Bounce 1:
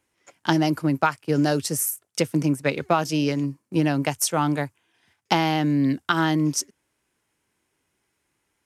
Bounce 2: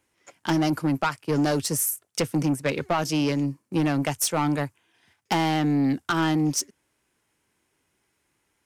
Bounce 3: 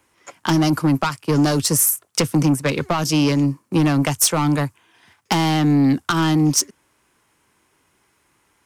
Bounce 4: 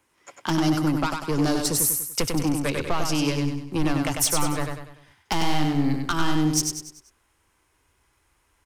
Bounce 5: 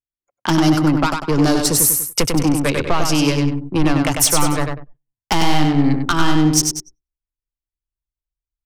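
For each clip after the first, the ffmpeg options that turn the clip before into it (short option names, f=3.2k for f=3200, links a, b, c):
-af "asoftclip=type=tanh:threshold=-18.5dB,volume=1.5dB"
-filter_complex "[0:a]equalizer=f=1.1k:t=o:w=0.65:g=6,acrossover=split=280|3000[a][b][c];[b]acompressor=threshold=-31dB:ratio=3[d];[a][d][c]amix=inputs=3:normalize=0,volume=8.5dB"
-filter_complex "[0:a]asubboost=boost=11:cutoff=53,asplit=2[a][b];[b]aecho=0:1:97|194|291|388|485:0.596|0.256|0.11|0.0474|0.0204[c];[a][c]amix=inputs=2:normalize=0,volume=-6dB"
-af "anlmdn=6.31,agate=range=-19dB:threshold=-49dB:ratio=16:detection=peak,volume=7.5dB"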